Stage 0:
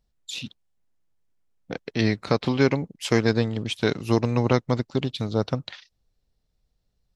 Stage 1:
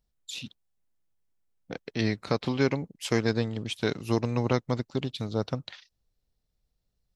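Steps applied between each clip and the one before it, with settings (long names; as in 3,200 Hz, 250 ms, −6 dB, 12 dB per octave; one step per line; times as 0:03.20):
high-shelf EQ 9,000 Hz +5.5 dB
level −5 dB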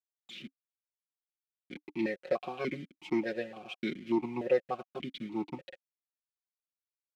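hold until the input has moved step −36 dBFS
comb filter 5.5 ms, depth 93%
formant filter that steps through the vowels 3.4 Hz
level +4.5 dB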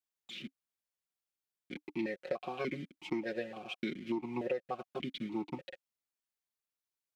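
downward compressor 6 to 1, threshold −33 dBFS, peak gain reduction 11.5 dB
level +1 dB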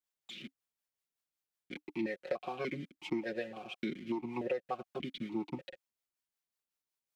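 two-band tremolo in antiphase 5.4 Hz, depth 50%, crossover 440 Hz
level +2 dB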